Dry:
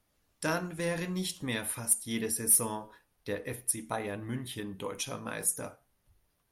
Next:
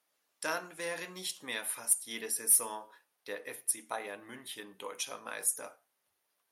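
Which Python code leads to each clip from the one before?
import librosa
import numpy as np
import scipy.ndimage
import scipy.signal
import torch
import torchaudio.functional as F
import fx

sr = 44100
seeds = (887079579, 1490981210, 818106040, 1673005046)

y = scipy.signal.sosfilt(scipy.signal.bessel(2, 610.0, 'highpass', norm='mag', fs=sr, output='sos'), x)
y = y * librosa.db_to_amplitude(-1.0)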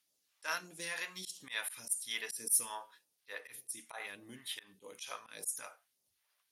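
y = fx.auto_swell(x, sr, attack_ms=108.0)
y = fx.phaser_stages(y, sr, stages=2, low_hz=200.0, high_hz=1400.0, hz=1.7, feedback_pct=50)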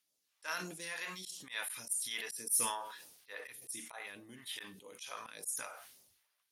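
y = fx.sustainer(x, sr, db_per_s=56.0)
y = y * librosa.db_to_amplitude(-2.5)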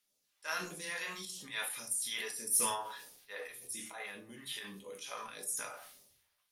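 y = fx.room_shoebox(x, sr, seeds[0], volume_m3=160.0, walls='furnished', distance_m=1.3)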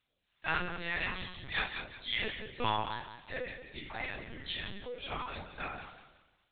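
y = fx.echo_feedback(x, sr, ms=178, feedback_pct=33, wet_db=-10)
y = fx.lpc_vocoder(y, sr, seeds[1], excitation='pitch_kept', order=10)
y = y * librosa.db_to_amplitude(5.5)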